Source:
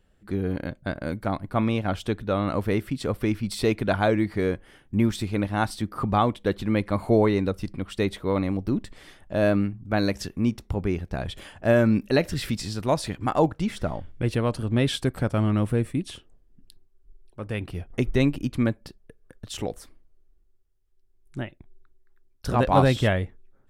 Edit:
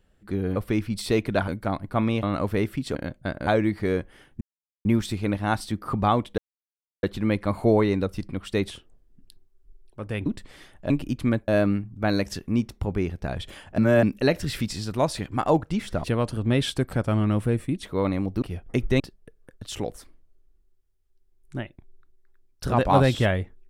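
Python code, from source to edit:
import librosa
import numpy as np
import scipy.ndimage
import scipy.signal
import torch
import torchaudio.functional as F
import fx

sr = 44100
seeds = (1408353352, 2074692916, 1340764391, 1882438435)

y = fx.edit(x, sr, fx.swap(start_s=0.56, length_s=0.52, other_s=3.09, other_length_s=0.92),
    fx.cut(start_s=1.83, length_s=0.54),
    fx.insert_silence(at_s=4.95, length_s=0.44),
    fx.insert_silence(at_s=6.48, length_s=0.65),
    fx.swap(start_s=8.14, length_s=0.59, other_s=16.09, other_length_s=1.57),
    fx.reverse_span(start_s=11.67, length_s=0.25),
    fx.cut(start_s=13.93, length_s=0.37),
    fx.move(start_s=18.24, length_s=0.58, to_s=9.37), tone=tone)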